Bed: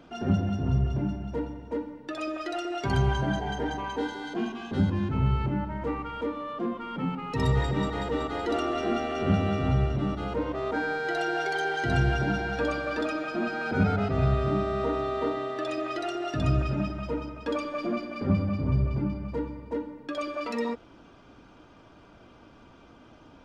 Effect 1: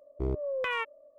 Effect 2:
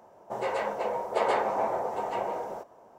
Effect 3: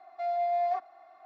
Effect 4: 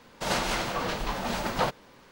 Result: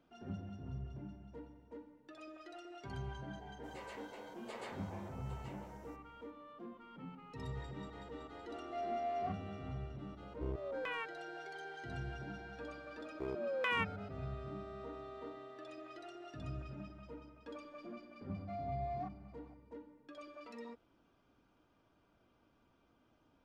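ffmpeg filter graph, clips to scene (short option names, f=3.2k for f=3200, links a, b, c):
-filter_complex "[3:a]asplit=2[a][b];[1:a]asplit=2[c][d];[0:a]volume=-19.5dB[e];[2:a]equalizer=f=740:t=o:w=2.3:g=-13.5[f];[d]highpass=f=570:p=1[g];[f]atrim=end=2.98,asetpts=PTS-STARTPTS,volume=-11dB,afade=t=in:d=0.004:c=hsin,afade=t=out:st=2.976:d=0.004:c=hsin,adelay=146853S[h];[a]atrim=end=1.25,asetpts=PTS-STARTPTS,volume=-10.5dB,afade=t=in:d=0.004:c=hsin,afade=t=out:st=1.246:d=0.004:c=hsin,adelay=8530[i];[c]atrim=end=1.18,asetpts=PTS-STARTPTS,volume=-10dB,afade=t=in:d=0.004:c=hsin,afade=t=out:st=1.176:d=0.004:c=hsin,adelay=10210[j];[g]atrim=end=1.18,asetpts=PTS-STARTPTS,volume=-2.5dB,afade=t=in:d=0.004:c=hsin,afade=t=out:st=1.176:d=0.004:c=hsin,adelay=573300S[k];[b]atrim=end=1.25,asetpts=PTS-STARTPTS,volume=-13.5dB,afade=t=in:d=0.004:c=hsin,afade=t=out:st=1.246:d=0.004:c=hsin,adelay=18290[l];[e][h][i][j][k][l]amix=inputs=6:normalize=0"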